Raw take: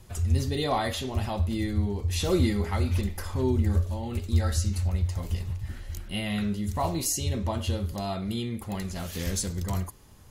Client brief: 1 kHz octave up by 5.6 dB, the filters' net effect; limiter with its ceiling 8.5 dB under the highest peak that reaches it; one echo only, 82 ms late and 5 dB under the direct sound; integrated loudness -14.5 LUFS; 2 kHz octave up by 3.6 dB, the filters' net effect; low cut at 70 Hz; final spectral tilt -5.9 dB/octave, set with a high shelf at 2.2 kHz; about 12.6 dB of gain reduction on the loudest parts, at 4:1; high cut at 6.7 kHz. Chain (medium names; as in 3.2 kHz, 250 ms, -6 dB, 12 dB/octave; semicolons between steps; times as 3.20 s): high-pass 70 Hz; low-pass 6.7 kHz; peaking EQ 1 kHz +7.5 dB; peaking EQ 2 kHz +6.5 dB; treble shelf 2.2 kHz -8 dB; compression 4:1, threshold -34 dBFS; peak limiter -29.5 dBFS; delay 82 ms -5 dB; trim +23.5 dB